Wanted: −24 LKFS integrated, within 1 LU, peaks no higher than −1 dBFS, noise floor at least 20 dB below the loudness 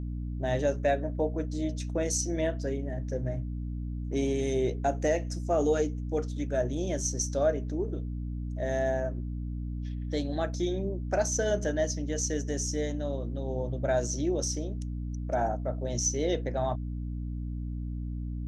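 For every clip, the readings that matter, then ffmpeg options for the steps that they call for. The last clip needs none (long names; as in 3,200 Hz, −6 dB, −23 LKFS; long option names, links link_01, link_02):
mains hum 60 Hz; hum harmonics up to 300 Hz; level of the hum −32 dBFS; integrated loudness −31.0 LKFS; sample peak −15.0 dBFS; target loudness −24.0 LKFS
→ -af "bandreject=frequency=60:width_type=h:width=6,bandreject=frequency=120:width_type=h:width=6,bandreject=frequency=180:width_type=h:width=6,bandreject=frequency=240:width_type=h:width=6,bandreject=frequency=300:width_type=h:width=6"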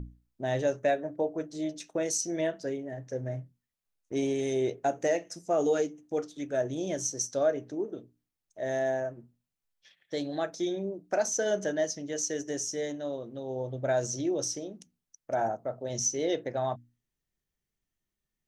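mains hum none found; integrated loudness −31.5 LKFS; sample peak −15.5 dBFS; target loudness −24.0 LKFS
→ -af "volume=7.5dB"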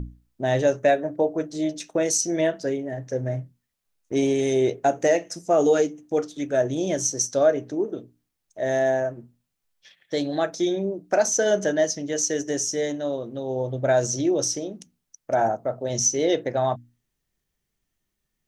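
integrated loudness −24.0 LKFS; sample peak −8.0 dBFS; background noise floor −80 dBFS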